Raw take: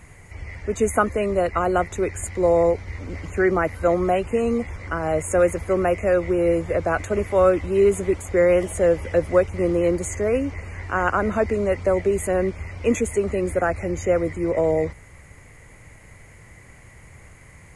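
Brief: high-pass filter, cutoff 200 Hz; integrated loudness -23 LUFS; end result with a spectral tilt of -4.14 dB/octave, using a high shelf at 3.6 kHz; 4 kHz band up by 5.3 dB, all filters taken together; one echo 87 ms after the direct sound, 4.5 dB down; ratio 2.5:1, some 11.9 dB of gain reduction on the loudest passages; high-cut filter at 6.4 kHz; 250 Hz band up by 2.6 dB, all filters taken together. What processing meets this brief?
high-pass 200 Hz; low-pass 6.4 kHz; peaking EQ 250 Hz +6 dB; treble shelf 3.6 kHz +6 dB; peaking EQ 4 kHz +4.5 dB; compression 2.5:1, threshold -30 dBFS; delay 87 ms -4.5 dB; trim +5.5 dB

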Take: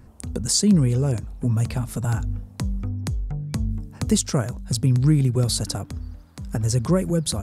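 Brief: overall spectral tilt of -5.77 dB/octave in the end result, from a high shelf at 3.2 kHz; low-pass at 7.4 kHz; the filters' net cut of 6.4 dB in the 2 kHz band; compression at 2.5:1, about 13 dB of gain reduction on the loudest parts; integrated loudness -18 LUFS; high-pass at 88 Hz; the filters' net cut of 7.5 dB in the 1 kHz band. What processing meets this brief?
high-pass 88 Hz; low-pass 7.4 kHz; peaking EQ 1 kHz -9 dB; peaking EQ 2 kHz -3 dB; treble shelf 3.2 kHz -6 dB; compression 2.5:1, threshold -34 dBFS; trim +16.5 dB

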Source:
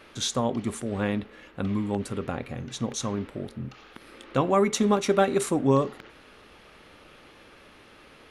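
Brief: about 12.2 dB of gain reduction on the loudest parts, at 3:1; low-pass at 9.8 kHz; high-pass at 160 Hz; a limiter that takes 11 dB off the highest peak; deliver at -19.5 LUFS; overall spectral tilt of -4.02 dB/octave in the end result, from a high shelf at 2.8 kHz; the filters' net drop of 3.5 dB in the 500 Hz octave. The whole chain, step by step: high-pass 160 Hz; low-pass 9.8 kHz; peaking EQ 500 Hz -4.5 dB; treble shelf 2.8 kHz +3 dB; compression 3:1, threshold -36 dBFS; trim +22.5 dB; peak limiter -7 dBFS

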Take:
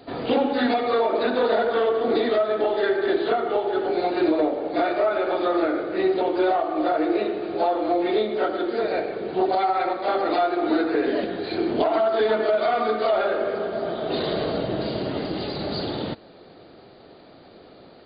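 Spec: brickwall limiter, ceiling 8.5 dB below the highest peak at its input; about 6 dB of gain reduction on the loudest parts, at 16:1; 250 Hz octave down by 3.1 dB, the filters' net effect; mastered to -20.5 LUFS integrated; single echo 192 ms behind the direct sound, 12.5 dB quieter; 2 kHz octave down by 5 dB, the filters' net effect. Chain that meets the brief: peaking EQ 250 Hz -4.5 dB; peaking EQ 2 kHz -7 dB; compression 16:1, threshold -24 dBFS; peak limiter -24 dBFS; delay 192 ms -12.5 dB; trim +11.5 dB

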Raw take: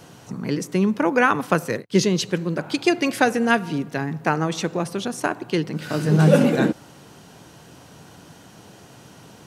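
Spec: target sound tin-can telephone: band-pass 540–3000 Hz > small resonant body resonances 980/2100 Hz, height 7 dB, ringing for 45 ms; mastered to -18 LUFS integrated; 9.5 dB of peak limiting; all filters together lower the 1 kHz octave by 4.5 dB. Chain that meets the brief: peaking EQ 1 kHz -5.5 dB; peak limiter -13.5 dBFS; band-pass 540–3000 Hz; small resonant body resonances 980/2100 Hz, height 7 dB, ringing for 45 ms; trim +14 dB

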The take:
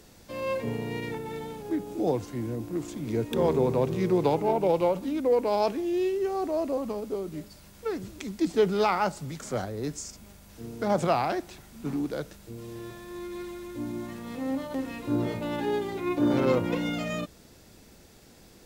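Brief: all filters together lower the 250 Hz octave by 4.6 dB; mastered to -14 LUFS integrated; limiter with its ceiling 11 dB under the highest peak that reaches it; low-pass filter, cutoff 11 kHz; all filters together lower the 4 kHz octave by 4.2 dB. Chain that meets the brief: low-pass 11 kHz; peaking EQ 250 Hz -6.5 dB; peaking EQ 4 kHz -5.5 dB; trim +21 dB; peak limiter -3.5 dBFS

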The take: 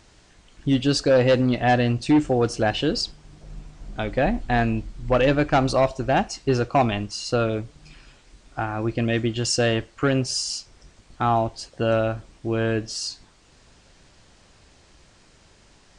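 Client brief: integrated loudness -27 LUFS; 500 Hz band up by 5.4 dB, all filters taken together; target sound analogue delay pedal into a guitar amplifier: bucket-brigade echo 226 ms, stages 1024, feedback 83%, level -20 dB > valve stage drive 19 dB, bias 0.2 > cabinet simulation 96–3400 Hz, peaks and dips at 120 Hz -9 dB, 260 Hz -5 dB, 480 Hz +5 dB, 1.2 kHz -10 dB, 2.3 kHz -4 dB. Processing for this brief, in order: peaking EQ 500 Hz +3.5 dB; bucket-brigade echo 226 ms, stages 1024, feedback 83%, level -20 dB; valve stage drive 19 dB, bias 0.2; cabinet simulation 96–3400 Hz, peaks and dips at 120 Hz -9 dB, 260 Hz -5 dB, 480 Hz +5 dB, 1.2 kHz -10 dB, 2.3 kHz -4 dB; trim -1 dB

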